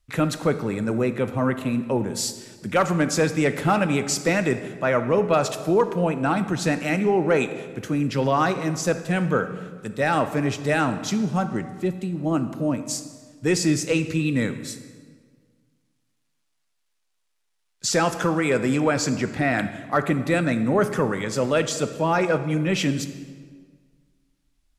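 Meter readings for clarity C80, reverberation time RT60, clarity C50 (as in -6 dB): 13.0 dB, 1.7 s, 11.0 dB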